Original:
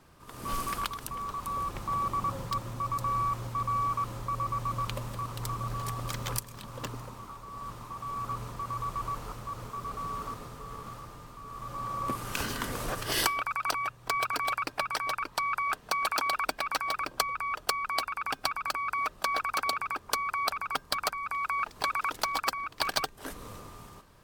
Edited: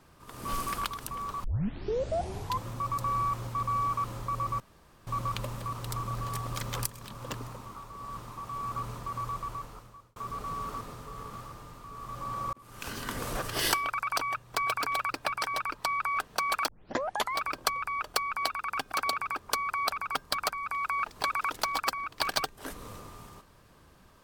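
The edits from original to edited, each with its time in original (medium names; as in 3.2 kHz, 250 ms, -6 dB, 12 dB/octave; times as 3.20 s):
1.44 s: tape start 1.23 s
4.60 s: insert room tone 0.47 s
8.75–9.69 s: fade out
12.06–12.77 s: fade in
16.21 s: tape start 0.68 s
18.45–19.52 s: delete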